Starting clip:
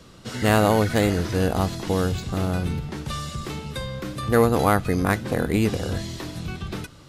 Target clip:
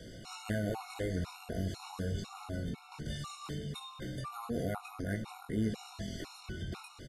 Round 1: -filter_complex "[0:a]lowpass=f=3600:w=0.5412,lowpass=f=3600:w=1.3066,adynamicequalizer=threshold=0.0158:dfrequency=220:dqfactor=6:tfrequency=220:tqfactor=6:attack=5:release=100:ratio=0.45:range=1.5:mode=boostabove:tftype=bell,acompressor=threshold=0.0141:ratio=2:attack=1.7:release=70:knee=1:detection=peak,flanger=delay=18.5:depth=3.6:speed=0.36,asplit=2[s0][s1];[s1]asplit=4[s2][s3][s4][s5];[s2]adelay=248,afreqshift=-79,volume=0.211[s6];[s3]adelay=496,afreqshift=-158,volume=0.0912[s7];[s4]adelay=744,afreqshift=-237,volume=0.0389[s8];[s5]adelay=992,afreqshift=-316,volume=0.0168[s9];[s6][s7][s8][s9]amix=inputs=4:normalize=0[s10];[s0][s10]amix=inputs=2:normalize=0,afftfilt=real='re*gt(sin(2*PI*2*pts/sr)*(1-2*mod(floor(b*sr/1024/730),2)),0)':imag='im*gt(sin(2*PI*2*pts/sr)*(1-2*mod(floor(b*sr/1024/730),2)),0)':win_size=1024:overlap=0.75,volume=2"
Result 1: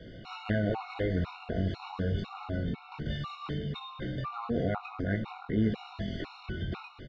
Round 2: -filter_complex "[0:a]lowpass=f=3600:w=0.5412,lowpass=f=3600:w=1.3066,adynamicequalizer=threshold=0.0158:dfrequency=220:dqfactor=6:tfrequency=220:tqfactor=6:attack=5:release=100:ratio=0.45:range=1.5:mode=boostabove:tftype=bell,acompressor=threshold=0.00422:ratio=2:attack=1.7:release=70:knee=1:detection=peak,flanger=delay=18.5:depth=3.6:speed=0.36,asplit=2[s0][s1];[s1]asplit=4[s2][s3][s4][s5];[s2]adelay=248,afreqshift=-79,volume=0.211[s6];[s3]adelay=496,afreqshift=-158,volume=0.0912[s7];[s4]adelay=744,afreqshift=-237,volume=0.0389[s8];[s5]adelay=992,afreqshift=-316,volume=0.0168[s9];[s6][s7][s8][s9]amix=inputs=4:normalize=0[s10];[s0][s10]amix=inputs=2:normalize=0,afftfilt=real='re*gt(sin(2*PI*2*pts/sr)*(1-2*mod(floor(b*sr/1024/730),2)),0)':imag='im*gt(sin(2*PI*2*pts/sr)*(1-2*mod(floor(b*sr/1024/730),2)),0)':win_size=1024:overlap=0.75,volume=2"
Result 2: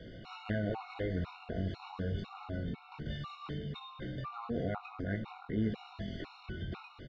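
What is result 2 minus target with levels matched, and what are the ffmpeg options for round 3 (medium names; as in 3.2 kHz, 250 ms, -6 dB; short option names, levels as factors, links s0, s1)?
4 kHz band -3.0 dB
-filter_complex "[0:a]lowpass=f=13000:w=0.5412,lowpass=f=13000:w=1.3066,adynamicequalizer=threshold=0.0158:dfrequency=220:dqfactor=6:tfrequency=220:tqfactor=6:attack=5:release=100:ratio=0.45:range=1.5:mode=boostabove:tftype=bell,acompressor=threshold=0.00422:ratio=2:attack=1.7:release=70:knee=1:detection=peak,flanger=delay=18.5:depth=3.6:speed=0.36,asplit=2[s0][s1];[s1]asplit=4[s2][s3][s4][s5];[s2]adelay=248,afreqshift=-79,volume=0.211[s6];[s3]adelay=496,afreqshift=-158,volume=0.0912[s7];[s4]adelay=744,afreqshift=-237,volume=0.0389[s8];[s5]adelay=992,afreqshift=-316,volume=0.0168[s9];[s6][s7][s8][s9]amix=inputs=4:normalize=0[s10];[s0][s10]amix=inputs=2:normalize=0,afftfilt=real='re*gt(sin(2*PI*2*pts/sr)*(1-2*mod(floor(b*sr/1024/730),2)),0)':imag='im*gt(sin(2*PI*2*pts/sr)*(1-2*mod(floor(b*sr/1024/730),2)),0)':win_size=1024:overlap=0.75,volume=2"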